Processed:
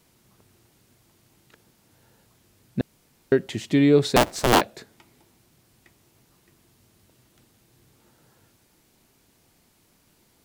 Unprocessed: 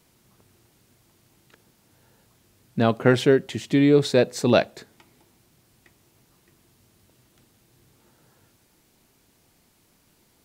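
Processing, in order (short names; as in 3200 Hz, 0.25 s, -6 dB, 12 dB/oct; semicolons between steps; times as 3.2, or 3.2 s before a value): 2.81–3.32 room tone; 4.16–4.61 cycle switcher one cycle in 2, inverted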